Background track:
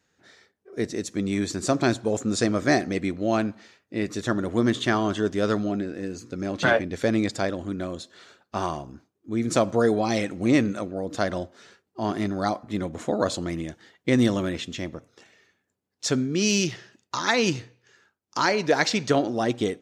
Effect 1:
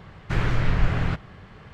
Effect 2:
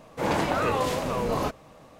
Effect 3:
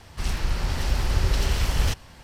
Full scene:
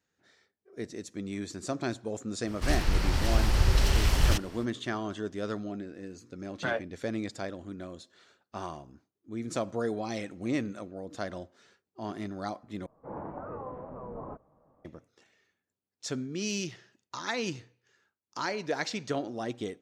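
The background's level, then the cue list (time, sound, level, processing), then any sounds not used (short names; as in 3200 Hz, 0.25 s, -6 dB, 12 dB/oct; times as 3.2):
background track -10.5 dB
2.44 add 3 -1 dB, fades 0.05 s
12.86 replace with 2 -14 dB + LPF 1200 Hz 24 dB/oct
not used: 1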